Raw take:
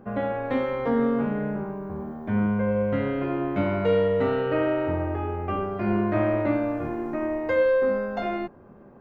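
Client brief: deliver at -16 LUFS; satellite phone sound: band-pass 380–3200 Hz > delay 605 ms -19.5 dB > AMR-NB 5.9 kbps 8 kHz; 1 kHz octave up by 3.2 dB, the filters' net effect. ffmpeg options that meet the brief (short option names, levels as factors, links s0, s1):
-af "highpass=380,lowpass=3200,equalizer=f=1000:t=o:g=4.5,aecho=1:1:605:0.106,volume=3.98" -ar 8000 -c:a libopencore_amrnb -b:a 5900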